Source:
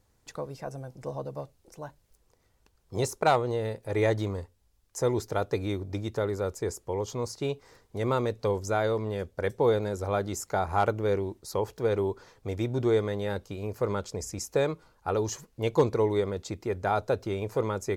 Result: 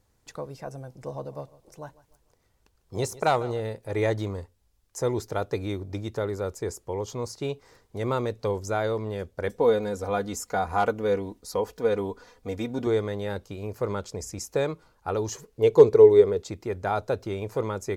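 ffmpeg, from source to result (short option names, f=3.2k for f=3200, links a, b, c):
-filter_complex "[0:a]asettb=1/sr,asplit=3[a][b][c];[a]atrim=end=0.984[d];[b]atrim=start=0.98:end=3.6,asetpts=PTS-STARTPTS,afade=t=in:d=0.004:c=qsin,afade=t=out:st=2.616:d=0.004:c=qsin,aecho=1:1:150|300|450:0.106|0.0403|0.0153,atrim=end_sample=115542[e];[c]atrim=start=3.596[f];[d][e]acrossfade=d=0.004:c1=hsin:c2=qsin[g];[g][f]acrossfade=d=0.004:c1=qsin:c2=hsin,asettb=1/sr,asplit=3[h][i][j];[h]atrim=end=9.484[k];[i]atrim=start=9.48:end=12.87,asetpts=PTS-STARTPTS,afade=t=in:d=0.004:c=qsin,afade=t=out:st=3.386:d=0.004:c=qsin,aecho=1:1:4.1:0.65,atrim=end_sample=149499[l];[j]atrim=start=12.866[m];[k][l]acrossfade=d=0.004:c1=hsin:c2=qsin[n];[n][m]acrossfade=d=0.004:c1=qsin:c2=hsin,asettb=1/sr,asplit=3[o][p][q];[o]atrim=end=15.344[r];[p]atrim=start=15.34:end=16.44,asetpts=PTS-STARTPTS,afade=t=in:d=0.004:c=qsin,afade=t=out:st=1.096:d=0.004:c=qsin,equalizer=f=430:t=o:w=0.3:g=14[s];[q]atrim=start=16.436[t];[r][s]acrossfade=d=0.004:c1=hsin:c2=qsin[u];[u][t]acrossfade=d=0.004:c1=qsin:c2=hsin"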